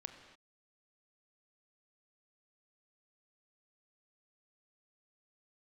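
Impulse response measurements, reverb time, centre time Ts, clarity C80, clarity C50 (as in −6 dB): non-exponential decay, 25 ms, 8.5 dB, 8.0 dB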